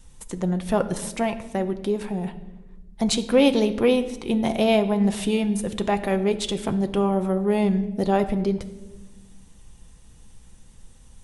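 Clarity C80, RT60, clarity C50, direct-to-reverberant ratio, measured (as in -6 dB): 15.5 dB, 1.2 s, 13.5 dB, 7.5 dB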